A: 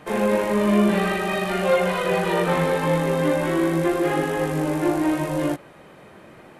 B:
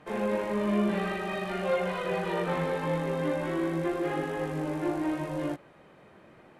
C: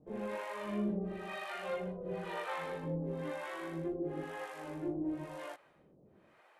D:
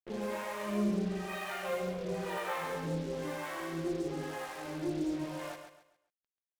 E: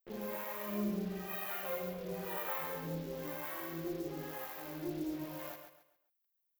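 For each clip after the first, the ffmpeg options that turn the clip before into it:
-af "highshelf=f=7.4k:g=-10.5,volume=-8.5dB"
-filter_complex "[0:a]acrossover=split=550[a][b];[a]aeval=exprs='val(0)*(1-1/2+1/2*cos(2*PI*1*n/s))':c=same[c];[b]aeval=exprs='val(0)*(1-1/2-1/2*cos(2*PI*1*n/s))':c=same[d];[c][d]amix=inputs=2:normalize=0,volume=-4.5dB"
-filter_complex "[0:a]acrusher=bits=7:mix=0:aa=0.5,asplit=2[a][b];[b]aecho=0:1:136|272|408|544:0.398|0.127|0.0408|0.013[c];[a][c]amix=inputs=2:normalize=0,volume=2.5dB"
-af "aexciter=amount=8.4:drive=7.2:freq=12k,volume=-5dB"

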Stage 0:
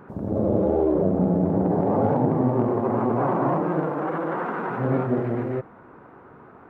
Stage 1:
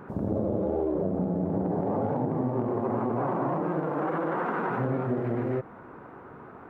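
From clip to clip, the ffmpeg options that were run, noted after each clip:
-af "acompressor=threshold=-26dB:ratio=6,volume=1.5dB"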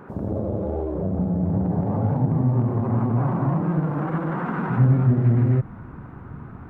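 -af "asubboost=boost=11.5:cutoff=140,volume=1.5dB"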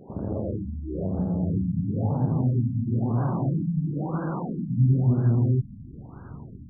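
-af "aexciter=amount=8.9:drive=7.2:freq=2.1k,afftfilt=real='re*lt(b*sr/1024,260*pow(1700/260,0.5+0.5*sin(2*PI*1*pts/sr)))':imag='im*lt(b*sr/1024,260*pow(1700/260,0.5+0.5*sin(2*PI*1*pts/sr)))':win_size=1024:overlap=0.75,volume=-3dB"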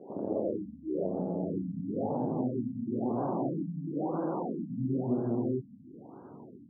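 -af "asuperpass=centerf=490:order=4:qfactor=0.81,volume=1.5dB"

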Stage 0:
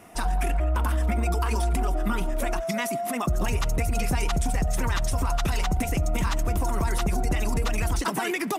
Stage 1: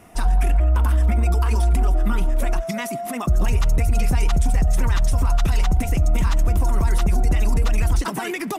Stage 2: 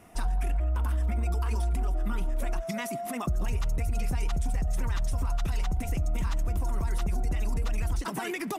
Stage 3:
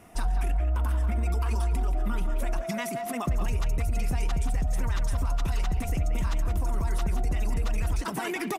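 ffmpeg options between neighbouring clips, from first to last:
-af "lowshelf=f=120:g=9.5"
-af "acompressor=threshold=-20dB:ratio=2.5,volume=-6dB"
-filter_complex "[0:a]asplit=2[a][b];[b]adelay=180,highpass=300,lowpass=3.4k,asoftclip=type=hard:threshold=-29dB,volume=-7dB[c];[a][c]amix=inputs=2:normalize=0,volume=1.5dB"

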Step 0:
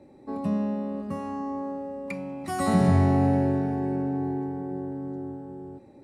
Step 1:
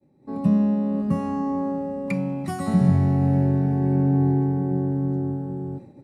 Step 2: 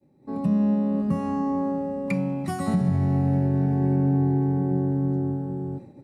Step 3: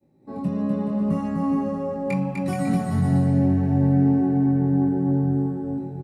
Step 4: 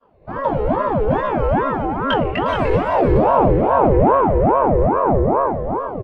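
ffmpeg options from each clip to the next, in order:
-af "agate=range=-33dB:threshold=-46dB:ratio=3:detection=peak,equalizer=f=150:w=1.3:g=13,dynaudnorm=f=200:g=3:m=11dB,volume=-7dB"
-af "alimiter=limit=-14dB:level=0:latency=1:release=183"
-filter_complex "[0:a]flanger=delay=17.5:depth=4.8:speed=0.75,asplit=2[a][b];[b]aecho=0:1:250|425|547.5|633.2|693.3:0.631|0.398|0.251|0.158|0.1[c];[a][c]amix=inputs=2:normalize=0,volume=2.5dB"
-filter_complex "[0:a]asplit=2[a][b];[b]asoftclip=type=tanh:threshold=-21dB,volume=-5dB[c];[a][c]amix=inputs=2:normalize=0,lowpass=f=2.7k:t=q:w=1.8,aeval=exprs='val(0)*sin(2*PI*520*n/s+520*0.6/2.4*sin(2*PI*2.4*n/s))':c=same,volume=5.5dB"

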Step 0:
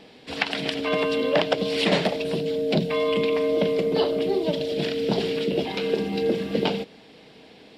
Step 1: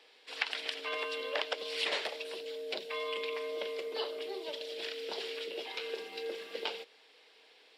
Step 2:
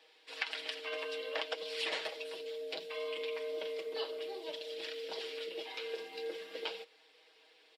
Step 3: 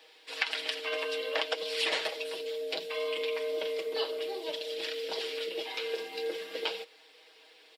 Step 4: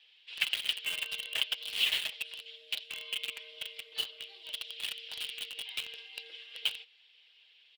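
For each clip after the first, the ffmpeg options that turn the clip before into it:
-af "highpass=f=490:w=0.5412,highpass=f=490:w=1.3066,equalizer=f=660:t=o:w=0.79:g=-9,volume=-7.5dB"
-af "aecho=1:1:6.3:0.55,flanger=delay=1.1:depth=8.2:regen=-67:speed=0.59:shape=triangular"
-af "crystalizer=i=0.5:c=0,volume=6dB"
-filter_complex "[0:a]bandpass=f=3k:t=q:w=4.1:csg=0,asplit=2[a][b];[b]acrusher=bits=5:mix=0:aa=0.000001,volume=-3dB[c];[a][c]amix=inputs=2:normalize=0,volume=1.5dB"

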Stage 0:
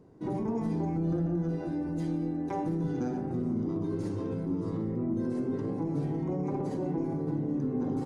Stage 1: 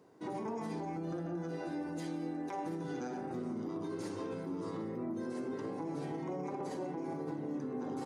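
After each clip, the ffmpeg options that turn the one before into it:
-af "highpass=f=990:p=1,alimiter=level_in=11dB:limit=-24dB:level=0:latency=1:release=86,volume=-11dB,volume=4.5dB"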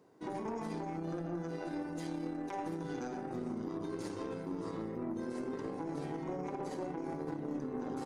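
-af "aeval=exprs='0.0316*(cos(1*acos(clip(val(0)/0.0316,-1,1)))-cos(1*PI/2))+0.00355*(cos(3*acos(clip(val(0)/0.0316,-1,1)))-cos(3*PI/2))+0.000447*(cos(4*acos(clip(val(0)/0.0316,-1,1)))-cos(4*PI/2))':c=same,volume=1.5dB"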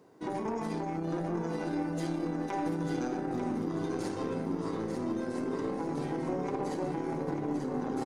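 -af "aecho=1:1:894|1788|2682|3576:0.473|0.18|0.0683|0.026,volume=5dB"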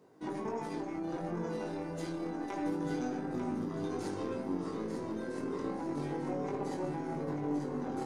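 -af "flanger=delay=19.5:depth=2.9:speed=0.29"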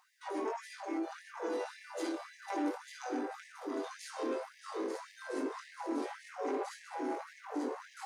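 -af "asoftclip=type=tanh:threshold=-32.5dB,afftfilt=real='re*gte(b*sr/1024,220*pow(1700/220,0.5+0.5*sin(2*PI*1.8*pts/sr)))':imag='im*gte(b*sr/1024,220*pow(1700/220,0.5+0.5*sin(2*PI*1.8*pts/sr)))':win_size=1024:overlap=0.75,volume=5dB"

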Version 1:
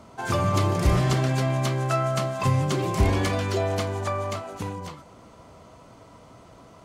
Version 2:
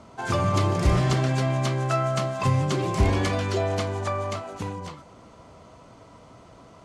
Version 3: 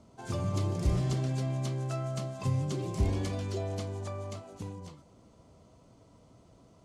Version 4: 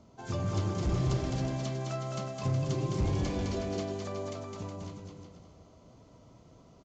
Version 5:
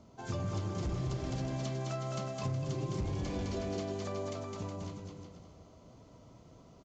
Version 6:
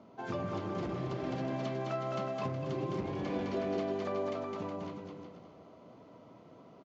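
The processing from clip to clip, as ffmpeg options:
-af "lowpass=9.1k"
-af "equalizer=f=1.5k:t=o:w=2.5:g=-11,volume=-6.5dB"
-af "aresample=16000,asoftclip=type=hard:threshold=-25.5dB,aresample=44100,aecho=1:1:210|367.5|485.6|574.2|640.7:0.631|0.398|0.251|0.158|0.1"
-af "acompressor=threshold=-32dB:ratio=6"
-af "highpass=210,lowpass=2.7k,volume=4.5dB"

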